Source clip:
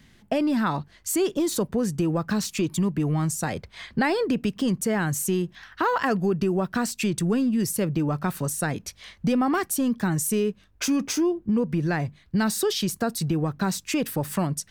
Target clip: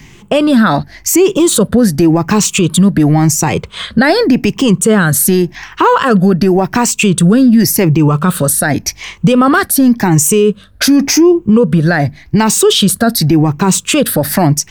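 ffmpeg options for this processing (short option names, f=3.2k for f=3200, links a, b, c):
-af "afftfilt=real='re*pow(10,10/40*sin(2*PI*(0.72*log(max(b,1)*sr/1024/100)/log(2)-(0.89)*(pts-256)/sr)))':imag='im*pow(10,10/40*sin(2*PI*(0.72*log(max(b,1)*sr/1024/100)/log(2)-(0.89)*(pts-256)/sr)))':win_size=1024:overlap=0.75,alimiter=level_in=17.5dB:limit=-1dB:release=50:level=0:latency=1,volume=-1dB"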